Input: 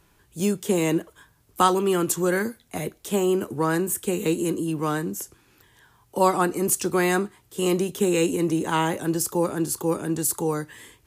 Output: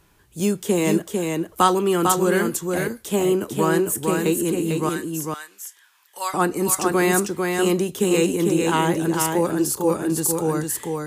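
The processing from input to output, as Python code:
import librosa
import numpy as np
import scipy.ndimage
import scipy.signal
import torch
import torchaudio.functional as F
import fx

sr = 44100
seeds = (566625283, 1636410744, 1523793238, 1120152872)

y = fx.highpass(x, sr, hz=1500.0, slope=12, at=(4.89, 6.34))
y = y + 10.0 ** (-4.0 / 20.0) * np.pad(y, (int(449 * sr / 1000.0), 0))[:len(y)]
y = y * librosa.db_to_amplitude(2.0)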